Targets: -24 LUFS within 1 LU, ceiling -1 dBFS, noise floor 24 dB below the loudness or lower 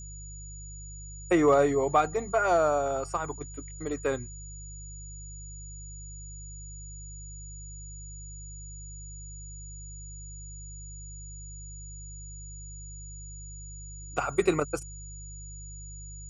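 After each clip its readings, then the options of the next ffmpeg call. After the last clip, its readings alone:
hum 50 Hz; harmonics up to 150 Hz; hum level -41 dBFS; steady tone 6900 Hz; tone level -45 dBFS; loudness -27.5 LUFS; peak -12.0 dBFS; loudness target -24.0 LUFS
-> -af "bandreject=f=50:t=h:w=4,bandreject=f=100:t=h:w=4,bandreject=f=150:t=h:w=4"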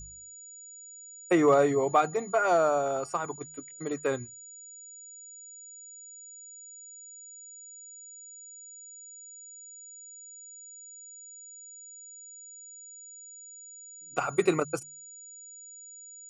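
hum none; steady tone 6900 Hz; tone level -45 dBFS
-> -af "bandreject=f=6.9k:w=30"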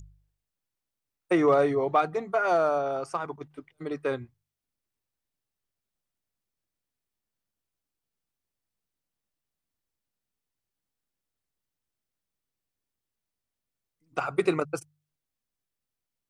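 steady tone none; loudness -27.0 LUFS; peak -12.0 dBFS; loudness target -24.0 LUFS
-> -af "volume=3dB"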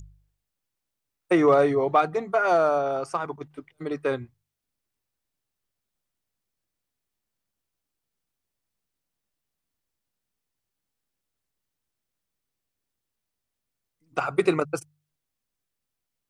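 loudness -24.0 LUFS; peak -9.0 dBFS; noise floor -84 dBFS

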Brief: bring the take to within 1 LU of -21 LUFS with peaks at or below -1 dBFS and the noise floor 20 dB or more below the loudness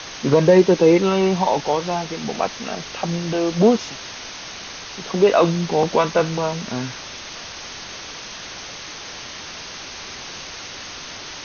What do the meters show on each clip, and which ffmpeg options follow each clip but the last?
noise floor -35 dBFS; noise floor target -39 dBFS; loudness -19.0 LUFS; peak -2.5 dBFS; loudness target -21.0 LUFS
-> -af "afftdn=nr=6:nf=-35"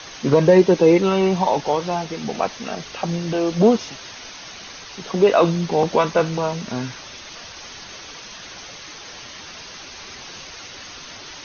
noise floor -38 dBFS; noise floor target -39 dBFS
-> -af "afftdn=nr=6:nf=-38"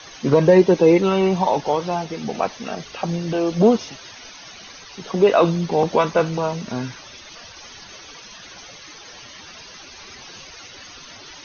noise floor -41 dBFS; loudness -19.0 LUFS; peak -2.5 dBFS; loudness target -21.0 LUFS
-> -af "volume=-2dB"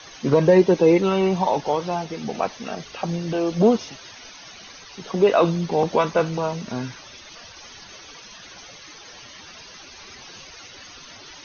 loudness -21.0 LUFS; peak -4.5 dBFS; noise floor -43 dBFS

